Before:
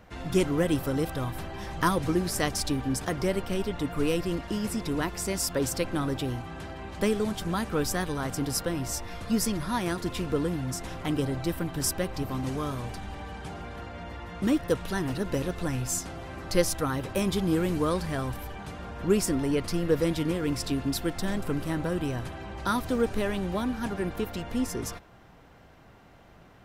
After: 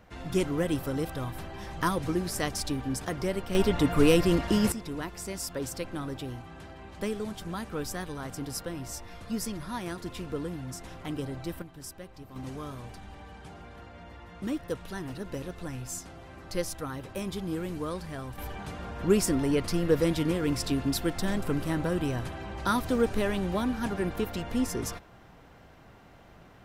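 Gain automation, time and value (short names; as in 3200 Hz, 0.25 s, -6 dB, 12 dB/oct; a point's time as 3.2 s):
-3 dB
from 3.55 s +6 dB
from 4.72 s -6.5 dB
from 11.62 s -15 dB
from 12.36 s -7.5 dB
from 18.38 s +0.5 dB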